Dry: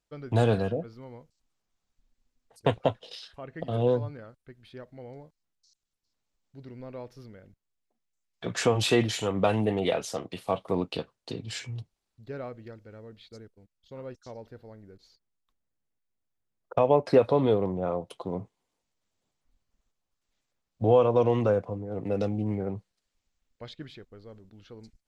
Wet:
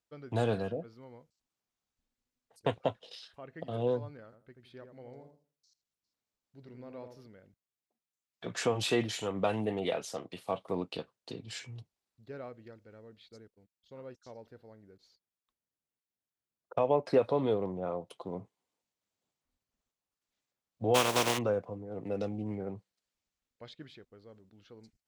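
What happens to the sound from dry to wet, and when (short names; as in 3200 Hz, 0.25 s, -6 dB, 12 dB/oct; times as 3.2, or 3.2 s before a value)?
4.24–7.27 darkening echo 82 ms, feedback 26%, low-pass 1200 Hz, level -6 dB
20.94–21.37 spectral contrast lowered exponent 0.33
whole clip: HPF 130 Hz 6 dB/oct; gain -5.5 dB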